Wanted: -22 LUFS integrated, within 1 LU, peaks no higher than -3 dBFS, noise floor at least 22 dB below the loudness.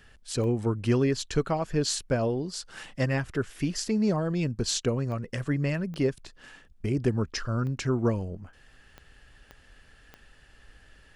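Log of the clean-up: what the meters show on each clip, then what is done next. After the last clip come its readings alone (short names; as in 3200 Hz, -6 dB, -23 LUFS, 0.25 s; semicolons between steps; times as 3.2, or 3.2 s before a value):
clicks 7; loudness -28.5 LUFS; peak -12.0 dBFS; loudness target -22.0 LUFS
-> de-click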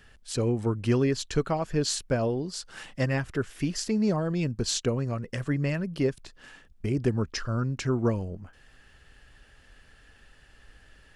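clicks 0; loudness -28.5 LUFS; peak -12.0 dBFS; loudness target -22.0 LUFS
-> gain +6.5 dB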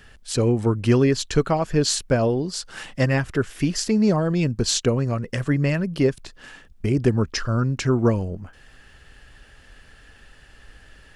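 loudness -22.0 LUFS; peak -5.5 dBFS; noise floor -51 dBFS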